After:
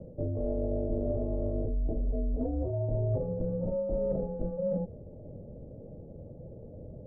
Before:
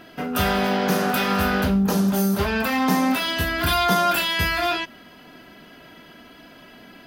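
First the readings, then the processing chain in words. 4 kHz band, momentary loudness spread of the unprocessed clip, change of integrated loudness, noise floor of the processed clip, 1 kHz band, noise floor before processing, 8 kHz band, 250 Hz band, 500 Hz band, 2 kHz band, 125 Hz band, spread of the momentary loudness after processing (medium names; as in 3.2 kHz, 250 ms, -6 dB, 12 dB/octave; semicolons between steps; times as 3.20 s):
under -40 dB, 4 LU, -11.5 dB, -47 dBFS, -28.5 dB, -47 dBFS, under -40 dB, -13.0 dB, -5.5 dB, under -40 dB, -5.0 dB, 16 LU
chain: Chebyshev band-pass 130–810 Hz, order 5; reverse; compression 6:1, threshold -32 dBFS, peak gain reduction 14.5 dB; reverse; frequency shift -150 Hz; trim +4 dB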